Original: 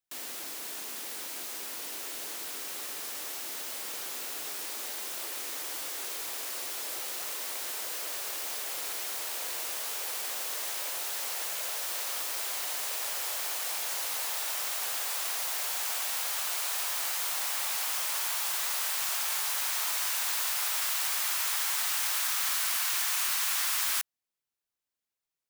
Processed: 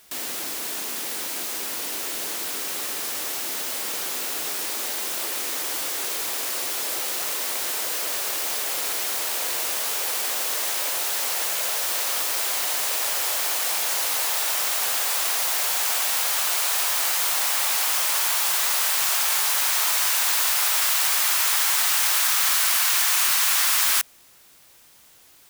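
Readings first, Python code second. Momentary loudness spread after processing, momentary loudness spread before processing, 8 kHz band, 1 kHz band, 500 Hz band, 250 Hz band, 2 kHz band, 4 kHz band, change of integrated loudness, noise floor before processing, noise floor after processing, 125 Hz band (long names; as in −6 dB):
9 LU, 9 LU, +9.0 dB, +9.0 dB, +9.5 dB, +11.0 dB, +9.0 dB, +9.0 dB, +9.0 dB, below −85 dBFS, −53 dBFS, can't be measured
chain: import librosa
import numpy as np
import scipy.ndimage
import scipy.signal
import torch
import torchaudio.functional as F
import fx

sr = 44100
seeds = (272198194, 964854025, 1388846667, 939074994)

y = fx.low_shelf(x, sr, hz=180.0, db=6.5)
y = fx.dmg_noise_colour(y, sr, seeds[0], colour='white', level_db=-62.0)
y = F.gain(torch.from_numpy(y), 9.0).numpy()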